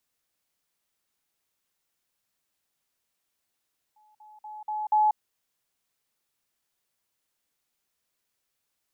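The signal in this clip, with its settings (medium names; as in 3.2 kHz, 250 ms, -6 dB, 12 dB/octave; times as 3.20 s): level ladder 852 Hz -58 dBFS, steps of 10 dB, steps 5, 0.19 s 0.05 s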